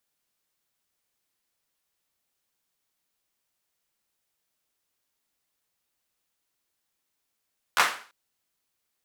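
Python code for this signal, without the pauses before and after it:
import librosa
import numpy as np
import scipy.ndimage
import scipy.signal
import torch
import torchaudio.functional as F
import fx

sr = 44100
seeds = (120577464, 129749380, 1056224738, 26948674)

y = fx.drum_clap(sr, seeds[0], length_s=0.34, bursts=3, spacing_ms=13, hz=1300.0, decay_s=0.42)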